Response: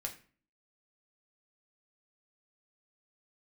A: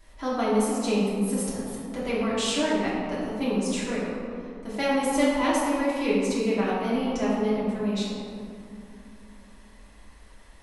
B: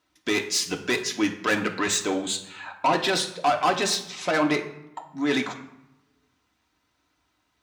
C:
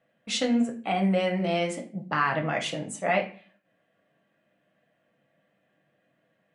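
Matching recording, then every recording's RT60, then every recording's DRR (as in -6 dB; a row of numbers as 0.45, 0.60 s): C; 2.5, 0.85, 0.40 s; -9.5, 2.0, 1.0 dB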